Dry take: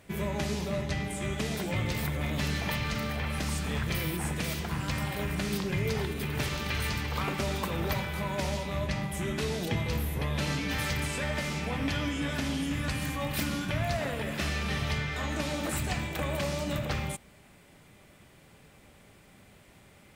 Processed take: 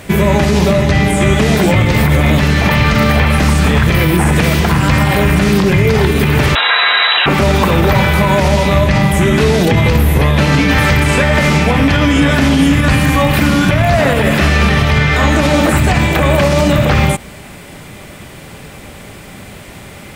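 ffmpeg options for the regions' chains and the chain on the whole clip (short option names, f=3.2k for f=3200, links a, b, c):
-filter_complex "[0:a]asettb=1/sr,asplit=3[a][b][c];[a]atrim=end=6.554[d];[b]atrim=start=6.55:end=7.26,asetpts=PTS-STARTPTS,afade=t=in:d=0.004:c=qsin,afade=t=out:st=0.706:d=0.004:c=qsin,lowpass=f=3.4k:t=q:w=0.5098,lowpass=f=3.4k:t=q:w=0.6013,lowpass=f=3.4k:t=q:w=0.9,lowpass=f=3.4k:t=q:w=2.563,afreqshift=-4000,highpass=520,acontrast=67[e];[c]atrim=start=7.256[f];[d][e]acrossfade=d=0.004:c1=hsin:c2=qsin[g];[g][f]acrossfade=d=0.004:c1=qsin:c2=hsin,acrossover=split=2600[h][i];[i]acompressor=threshold=-45dB:ratio=4:attack=1:release=60[j];[h][j]amix=inputs=2:normalize=0,alimiter=level_in=24.5dB:limit=-1dB:release=50:level=0:latency=1,volume=-1dB"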